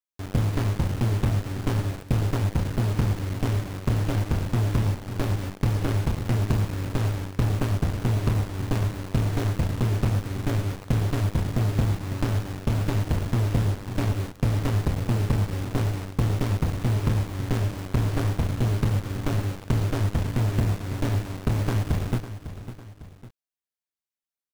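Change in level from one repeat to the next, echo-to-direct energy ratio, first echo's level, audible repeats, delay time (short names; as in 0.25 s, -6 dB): -6.5 dB, -11.5 dB, -12.5 dB, 2, 0.552 s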